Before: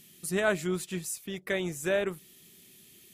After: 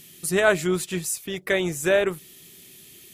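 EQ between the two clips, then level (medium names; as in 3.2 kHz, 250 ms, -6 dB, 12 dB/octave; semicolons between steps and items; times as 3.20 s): peaking EQ 210 Hz -7.5 dB 0.29 oct; +8.0 dB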